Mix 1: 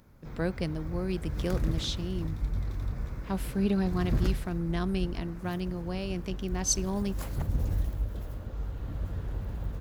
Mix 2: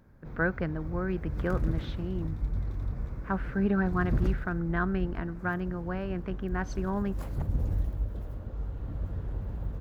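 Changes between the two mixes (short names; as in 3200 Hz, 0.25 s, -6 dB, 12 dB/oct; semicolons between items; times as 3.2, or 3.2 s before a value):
speech: add synth low-pass 1500 Hz, resonance Q 4.6; background: add high shelf 2000 Hz -11 dB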